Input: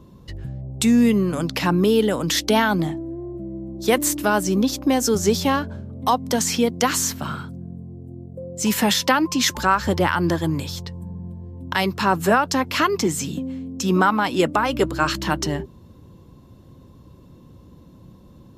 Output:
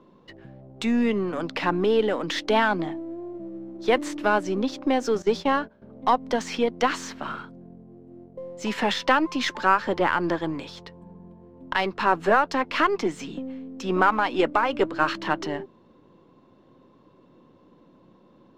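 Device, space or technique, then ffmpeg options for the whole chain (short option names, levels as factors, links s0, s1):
crystal radio: -filter_complex "[0:a]highpass=300,lowpass=2900,aeval=exprs='if(lt(val(0),0),0.708*val(0),val(0))':c=same,asettb=1/sr,asplit=3[s0][s1][s2];[s0]atrim=end=5.224[s3];[s1]atrim=start=5.22:end=5.82,asetpts=PTS-STARTPTS,afade=t=in:d=0.004:c=qsin,afade=t=out:st=0.596:d=0.004:c=qsin,agate=range=0.178:threshold=0.0355:ratio=16:detection=peak[s4];[s2]atrim=start=5.816[s5];[s3][s4]acrossfade=d=0.004:c1=hsin:c2=qsin[s6];[s6][s5]acrossfade=d=0.004:c1=qsin:c2=hsin"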